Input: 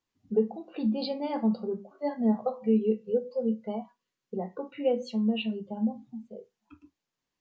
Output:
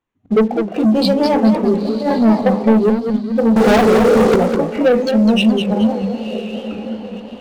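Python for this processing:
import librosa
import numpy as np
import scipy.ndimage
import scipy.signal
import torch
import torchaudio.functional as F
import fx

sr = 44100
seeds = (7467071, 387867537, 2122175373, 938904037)

p1 = fx.wiener(x, sr, points=9)
p2 = fx.echo_diffused(p1, sr, ms=1026, feedback_pct=42, wet_db=-14)
p3 = fx.transient(p2, sr, attack_db=-12, sustain_db=5, at=(1.65, 2.19))
p4 = fx.leveller(p3, sr, passes=5, at=(3.56, 4.36))
p5 = 10.0 ** (-30.5 / 20.0) * np.tanh(p4 / 10.0 ** (-30.5 / 20.0))
p6 = p4 + (p5 * 10.0 ** (-7.0 / 20.0))
p7 = fx.spec_erase(p6, sr, start_s=2.9, length_s=0.49, low_hz=260.0, high_hz=3000.0)
p8 = fx.low_shelf(p7, sr, hz=160.0, db=-8.0, at=(5.82, 6.27))
p9 = fx.leveller(p8, sr, passes=2)
p10 = fx.echo_warbled(p9, sr, ms=211, feedback_pct=34, rate_hz=2.8, cents=195, wet_db=-7)
y = p10 * 10.0 ** (7.5 / 20.0)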